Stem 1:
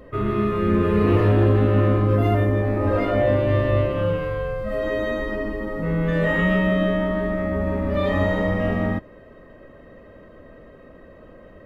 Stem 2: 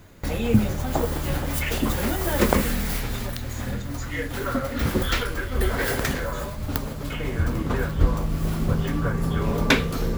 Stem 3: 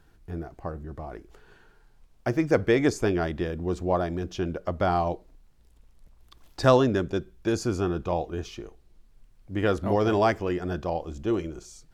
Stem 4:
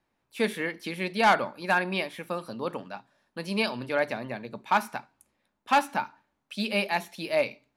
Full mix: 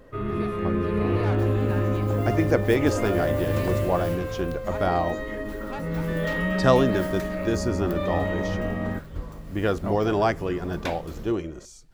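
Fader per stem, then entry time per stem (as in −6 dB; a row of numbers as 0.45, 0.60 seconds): −6.0, −14.5, 0.0, −16.5 decibels; 0.00, 1.15, 0.00, 0.00 seconds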